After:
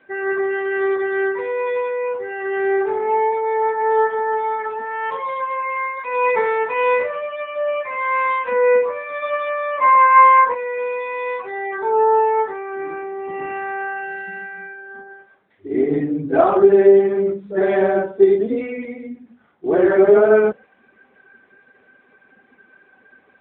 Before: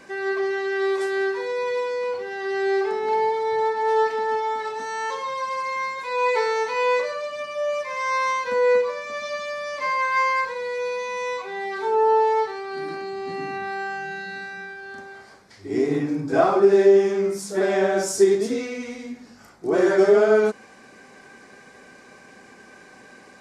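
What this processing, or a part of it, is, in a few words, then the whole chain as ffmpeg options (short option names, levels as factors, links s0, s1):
mobile call with aggressive noise cancelling: -filter_complex "[0:a]asettb=1/sr,asplit=3[s0][s1][s2];[s0]atrim=end=9.224[s3];[s1]atrim=start=9.22:end=10.55,asetpts=PTS-STARTPTS,afade=t=in:d=0.004:c=qsin,afade=t=out:st=1.326:d=0.004:c=qsin,equalizer=f=100:t=o:w=0.67:g=-4,equalizer=f=400:t=o:w=0.67:g=8,equalizer=f=1000:t=o:w=0.67:g=9[s4];[s2]atrim=start=10.546[s5];[s3][s4]acrossfade=d=0.004:c1=hsin:c2=qsin[s6];[s6][s5]acrossfade=d=0.004:c1=qsin:c2=hsin,highpass=f=140:p=1,afftdn=nr=12:nf=-35,volume=1.68" -ar 8000 -c:a libopencore_amrnb -b:a 10200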